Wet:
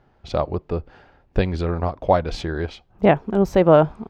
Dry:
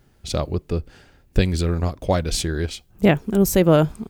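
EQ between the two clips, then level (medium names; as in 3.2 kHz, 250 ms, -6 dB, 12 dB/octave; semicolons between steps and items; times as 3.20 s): distance through air 240 m; peaking EQ 840 Hz +11.5 dB 1.7 oct; treble shelf 5.9 kHz +8 dB; -3.5 dB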